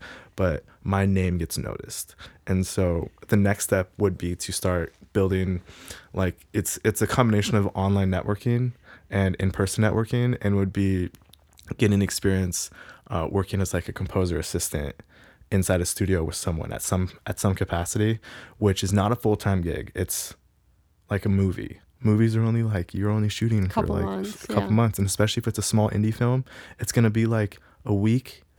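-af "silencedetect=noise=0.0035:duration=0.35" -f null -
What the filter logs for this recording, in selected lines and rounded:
silence_start: 20.35
silence_end: 21.09 | silence_duration: 0.75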